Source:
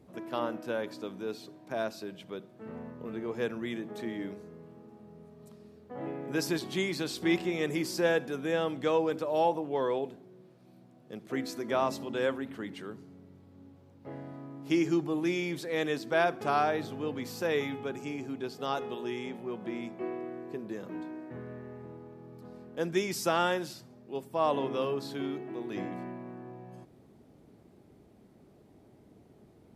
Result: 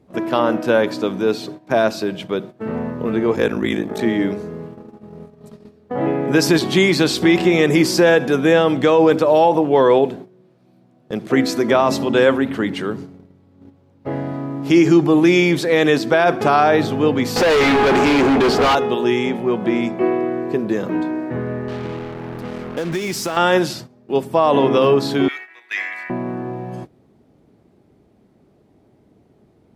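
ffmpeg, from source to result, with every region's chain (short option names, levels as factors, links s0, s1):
-filter_complex "[0:a]asettb=1/sr,asplit=3[s0][s1][s2];[s0]atrim=end=3.354[s3];[s1]atrim=start=3.35:end=4.01,asetpts=PTS-STARTPTS,afade=t=in:d=0.004:c=qsin,afade=t=out:st=0.656:d=0.004:c=qsin,highshelf=f=7400:g=7,aeval=exprs='val(0)*sin(2*PI*26*n/s)':c=same,bandreject=f=2900:w=26[s4];[s2]atrim=start=4.006[s5];[s3][s4]acrossfade=d=0.004:c1=hsin:c2=qsin[s6];[s6][s5]acrossfade=d=0.004:c1=qsin:c2=hsin,asettb=1/sr,asplit=3[s7][s8][s9];[s7]atrim=end=17.364[s10];[s8]atrim=start=17.36:end=18.75,asetpts=PTS-STARTPTS,afade=t=in:d=0.004:c=qsin,afade=t=out:st=1.386:d=0.004:c=qsin,asplit=2[s11][s12];[s12]highpass=f=720:p=1,volume=31.6,asoftclip=type=tanh:threshold=0.126[s13];[s11][s13]amix=inputs=2:normalize=0,lowpass=f=1300:p=1,volume=0.501,volume=35.5,asoftclip=hard,volume=0.0282[s14];[s9]atrim=start=18.746[s15];[s10][s14]acrossfade=d=0.004:c1=hsin:c2=qsin[s16];[s16][s15]acrossfade=d=0.004:c1=qsin:c2=hsin,asettb=1/sr,asplit=3[s17][s18][s19];[s17]atrim=end=21.684[s20];[s18]atrim=start=21.68:end=23.37,asetpts=PTS-STARTPTS,afade=t=in:d=0.004:c=qsin,afade=t=out:st=1.686:d=0.004:c=qsin,highpass=58,acompressor=threshold=0.0141:ratio=12:attack=3.2:release=140:knee=1:detection=peak,acrusher=bits=7:mix=0:aa=0.5[s21];[s19]atrim=start=23.366[s22];[s20][s21]acrossfade=d=0.004:c1=hsin:c2=qsin[s23];[s23][s22]acrossfade=d=0.004:c1=qsin:c2=hsin,asettb=1/sr,asplit=3[s24][s25][s26];[s24]atrim=end=25.284[s27];[s25]atrim=start=25.28:end=26.1,asetpts=PTS-STARTPTS,afade=t=in:d=0.004:c=qsin,afade=t=out:st=0.816:d=0.004:c=qsin,highpass=f=2000:t=q:w=3.6,equalizer=f=3100:t=o:w=0.57:g=-4.5[s28];[s26]atrim=start=26.096[s29];[s27][s28]acrossfade=d=0.004:c1=hsin:c2=qsin[s30];[s30][s29]acrossfade=d=0.004:c1=qsin:c2=hsin,agate=range=0.178:threshold=0.00316:ratio=16:detection=peak,highshelf=f=7800:g=-7.5,alimiter=level_in=12.6:limit=0.891:release=50:level=0:latency=1,volume=0.668"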